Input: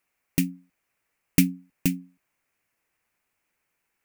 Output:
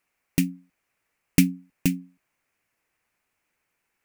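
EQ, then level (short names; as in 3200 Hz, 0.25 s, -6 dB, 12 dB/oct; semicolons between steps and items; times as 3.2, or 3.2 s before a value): high shelf 11000 Hz -5 dB; +1.5 dB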